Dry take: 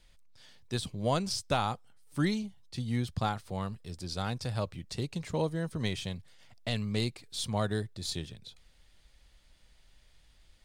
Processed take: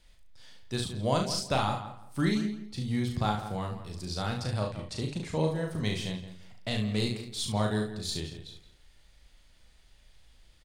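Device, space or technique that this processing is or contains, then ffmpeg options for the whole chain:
slapback doubling: -filter_complex "[0:a]asettb=1/sr,asplit=3[s0][s1][s2];[s0]atrim=end=4.424[s3];[s1]atrim=start=4.42:end=5.5,asetpts=PTS-STARTPTS,afade=t=in:d=0.004:c=qsin,afade=t=out:st=1.076:d=0.004:c=qsin,lowpass=f=12000:w=0.5412,lowpass=f=12000:w=1.3066[s4];[s2]atrim=start=5.496[s5];[s3][s4]acrossfade=d=0.004:c1=hsin:c2=qsin[s6];[s6][s5]acrossfade=d=0.004:c1=qsin:c2=hsin,asplit=2[s7][s8];[s8]adelay=169,lowpass=f=2600:p=1,volume=0.282,asplit=2[s9][s10];[s10]adelay=169,lowpass=f=2600:p=1,volume=0.24,asplit=2[s11][s12];[s12]adelay=169,lowpass=f=2600:p=1,volume=0.24[s13];[s7][s9][s11][s13]amix=inputs=4:normalize=0,asplit=3[s14][s15][s16];[s15]adelay=38,volume=0.631[s17];[s16]adelay=71,volume=0.398[s18];[s14][s17][s18]amix=inputs=3:normalize=0"

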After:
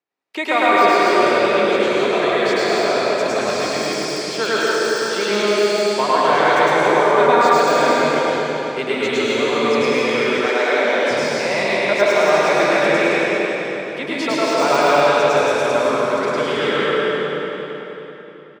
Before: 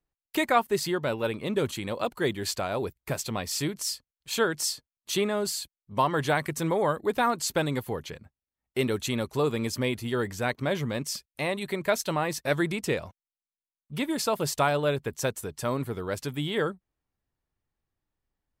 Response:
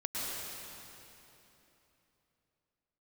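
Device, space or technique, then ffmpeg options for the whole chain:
station announcement: -filter_complex "[0:a]highpass=350,lowpass=4700,equalizer=f=2300:t=o:w=0.23:g=5,aecho=1:1:105|274.1:1|0.501[s0];[1:a]atrim=start_sample=2205[s1];[s0][s1]afir=irnorm=-1:irlink=0,asplit=2[s2][s3];[s3]adelay=379,lowpass=f=4100:p=1,volume=0.355,asplit=2[s4][s5];[s5]adelay=379,lowpass=f=4100:p=1,volume=0.44,asplit=2[s6][s7];[s7]adelay=379,lowpass=f=4100:p=1,volume=0.44,asplit=2[s8][s9];[s9]adelay=379,lowpass=f=4100:p=1,volume=0.44,asplit=2[s10][s11];[s11]adelay=379,lowpass=f=4100:p=1,volume=0.44[s12];[s2][s4][s6][s8][s10][s12]amix=inputs=6:normalize=0,deesser=0.7,asettb=1/sr,asplit=3[s13][s14][s15];[s13]atrim=end=10.464[s16];[s14]atrim=start=10.46:end=11.11,asetpts=PTS-STARTPTS,afade=t=in:d=0.004:c=qsin,afade=t=out:st=0.646:d=0.004:c=qsin,highpass=f=260:w=0.5412,highpass=f=260:w=1.3066[s17];[s15]atrim=start=11.106[s18];[s16][s17]acrossfade=d=0.004:c1=hsin:c2=qsin[s19];[s19][s18]acrossfade=d=0.004:c1=qsin:c2=hsin,volume=1.78"

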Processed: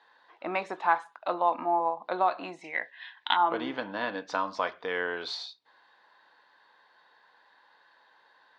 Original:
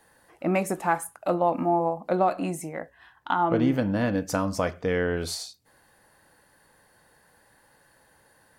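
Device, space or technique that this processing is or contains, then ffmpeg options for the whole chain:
phone earpiece: -filter_complex "[0:a]asettb=1/sr,asplit=3[s0][s1][s2];[s0]atrim=end=2.644[s3];[s1]atrim=start=2.64:end=3.37,asetpts=PTS-STARTPTS,afade=t=in:d=0.004:c=qsin,afade=t=out:st=0.726:d=0.004:c=qsin,highshelf=f=1600:t=q:w=3:g=8[s4];[s2]atrim=start=3.366[s5];[s3][s4]acrossfade=d=0.004:c1=hsin:c2=qsin[s6];[s6][s5]acrossfade=d=0.004:c1=qsin:c2=hsin,highpass=490,equalizer=f=550:t=q:w=4:g=-4,equalizer=f=1000:t=q:w=4:g=8,equalizer=f=1600:t=q:w=4:g=3,equalizer=f=3700:t=q:w=4:g=10,lowpass=f=4500:w=0.5412,lowpass=f=4500:w=1.3066,volume=0.75"

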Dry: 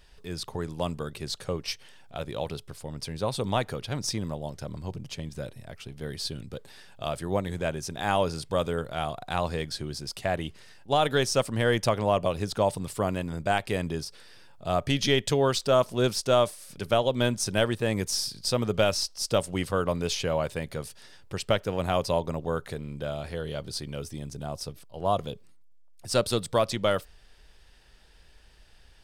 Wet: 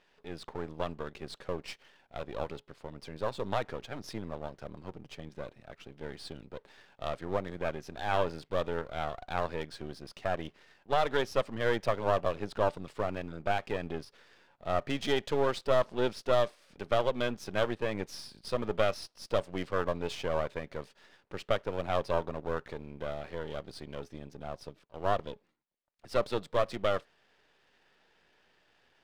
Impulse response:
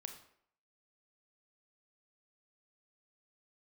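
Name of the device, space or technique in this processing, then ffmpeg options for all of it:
crystal radio: -af "highpass=230,lowpass=2800,aeval=exprs='if(lt(val(0),0),0.251*val(0),val(0))':c=same"

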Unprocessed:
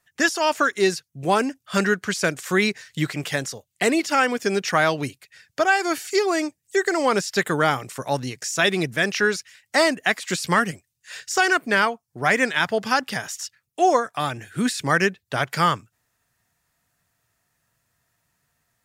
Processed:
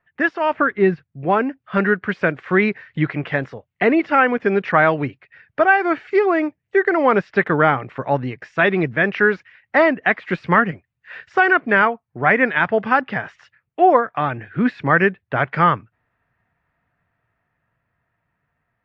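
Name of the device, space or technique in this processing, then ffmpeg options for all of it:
action camera in a waterproof case: -filter_complex "[0:a]asettb=1/sr,asplit=3[s0][s1][s2];[s0]atrim=end=0.534[s3];[s1]atrim=start=0.53:end=1.12,asetpts=PTS-STARTPTS,afade=t=in:d=0.004:c=qsin,afade=t=out:st=0.586:d=0.004:c=qsin,bass=f=250:g=10,treble=f=4000:g=-7[s4];[s2]atrim=start=1.116[s5];[s3][s4]acrossfade=d=0.004:c1=hsin:c2=qsin[s6];[s6][s5]acrossfade=d=0.004:c1=qsin:c2=hsin,lowpass=f=2300:w=0.5412,lowpass=f=2300:w=1.3066,dynaudnorm=f=450:g=9:m=1.58,volume=1.26" -ar 32000 -c:a aac -b:a 64k

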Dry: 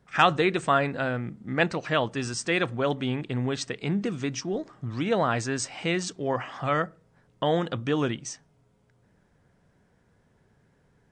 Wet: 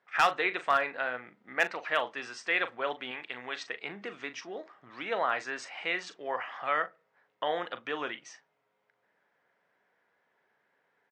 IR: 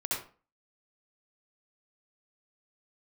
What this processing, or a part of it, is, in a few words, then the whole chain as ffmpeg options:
megaphone: -filter_complex "[0:a]highpass=640,lowpass=3300,equalizer=f=2000:t=o:w=0.57:g=4,asoftclip=type=hard:threshold=0.224,asplit=2[s0][s1];[s1]adelay=40,volume=0.251[s2];[s0][s2]amix=inputs=2:normalize=0,asettb=1/sr,asplit=3[s3][s4][s5];[s3]atrim=end=3.114[s6];[s4]atrim=start=3.11:end=3.56,asetpts=PTS-STARTPTS,afade=t=in:d=0.004:c=qsin,afade=t=out:st=0.446:d=0.004:c=qsin,tiltshelf=f=890:g=-5[s7];[s5]atrim=start=3.556[s8];[s6][s7]acrossfade=d=0.004:c1=hsin:c2=qsin[s9];[s9][s8]acrossfade=d=0.004:c1=qsin:c2=hsin,volume=0.75"

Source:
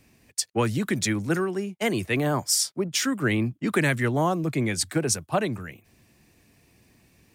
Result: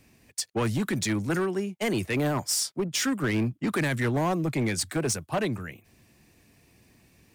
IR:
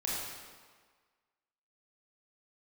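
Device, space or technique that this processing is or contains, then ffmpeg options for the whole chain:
limiter into clipper: -af "alimiter=limit=0.158:level=0:latency=1:release=26,asoftclip=type=hard:threshold=0.0841"

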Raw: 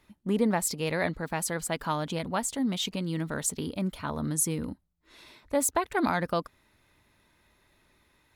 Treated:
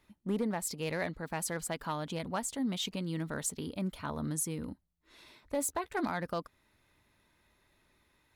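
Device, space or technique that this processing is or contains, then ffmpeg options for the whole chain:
limiter into clipper: -filter_complex "[0:a]alimiter=limit=0.126:level=0:latency=1:release=379,asoftclip=type=hard:threshold=0.0944,asettb=1/sr,asplit=3[s0][s1][s2];[s0]atrim=end=5.574[s3];[s1]atrim=start=5.57:end=6.08,asetpts=PTS-STARTPTS,afade=t=in:d=0.004:c=qsin,afade=t=out:st=0.506:d=0.004:c=qsin,asplit=2[s4][s5];[s5]adelay=14,volume=0.266[s6];[s4][s6]amix=inputs=2:normalize=0,atrim=end_sample=22491[s7];[s2]atrim=start=6.076[s8];[s3][s7]acrossfade=d=0.004:c1=hsin:c2=qsin[s9];[s9][s8]acrossfade=d=0.004:c1=qsin:c2=hsin,volume=0.596"

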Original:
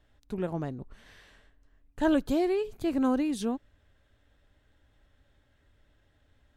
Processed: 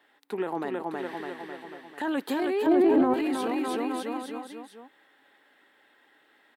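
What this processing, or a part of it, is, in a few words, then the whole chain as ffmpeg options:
laptop speaker: -filter_complex "[0:a]highpass=f=330:w=0.5412,highpass=f=330:w=1.3066,equalizer=f=160:t=o:w=0.67:g=5,equalizer=f=630:t=o:w=0.67:g=-10,equalizer=f=6300:t=o:w=0.67:g=-10,equalizer=f=800:t=o:w=0.56:g=8,equalizer=f=1900:t=o:w=0.3:g=5.5,aecho=1:1:320|608|867.2|1100|1310:0.631|0.398|0.251|0.158|0.1,alimiter=level_in=1.88:limit=0.0631:level=0:latency=1:release=13,volume=0.531,asettb=1/sr,asplit=3[s0][s1][s2];[s0]atrim=end=2.664[s3];[s1]atrim=start=2.66:end=3.14,asetpts=PTS-STARTPTS,afade=t=in:d=0.004:c=qsin,afade=t=out:st=0.476:d=0.004:c=qsin,tiltshelf=f=1500:g=9[s4];[s2]atrim=start=3.136[s5];[s3][s4]acrossfade=d=0.004:c1=hsin:c2=qsin[s6];[s6][s5]acrossfade=d=0.004:c1=qsin:c2=hsin,volume=2.66"

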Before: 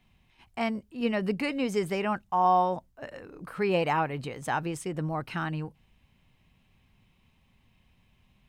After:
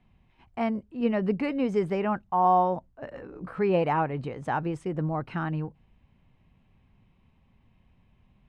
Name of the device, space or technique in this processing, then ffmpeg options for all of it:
through cloth: -filter_complex "[0:a]lowpass=8800,highshelf=f=2600:g=-17,asettb=1/sr,asplit=3[s0][s1][s2];[s0]atrim=end=3.134[s3];[s1]atrim=start=3.13:end=3.59,asetpts=PTS-STARTPTS,afade=t=in:d=0.004:c=qsin,afade=t=out:st=0.456:d=0.004:c=qsin,asplit=2[s4][s5];[s5]adelay=16,volume=0.596[s6];[s4][s6]amix=inputs=2:normalize=0,atrim=end_sample=20286[s7];[s2]atrim=start=3.586[s8];[s3][s7]acrossfade=d=0.004:c1=hsin:c2=qsin[s9];[s9][s8]acrossfade=d=0.004:c1=qsin:c2=hsin,volume=1.41"

